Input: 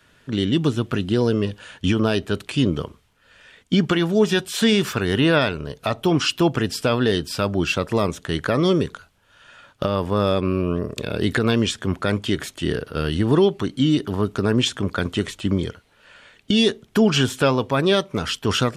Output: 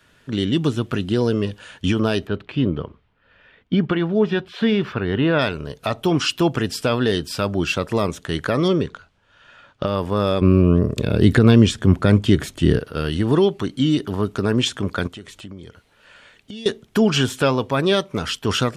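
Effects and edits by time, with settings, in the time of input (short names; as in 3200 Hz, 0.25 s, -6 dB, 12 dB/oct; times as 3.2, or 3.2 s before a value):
2.27–5.39 air absorption 340 m
8.68–9.87 air absorption 89 m
10.41–12.79 low shelf 340 Hz +11.5 dB
15.07–16.66 compressor 3:1, threshold -38 dBFS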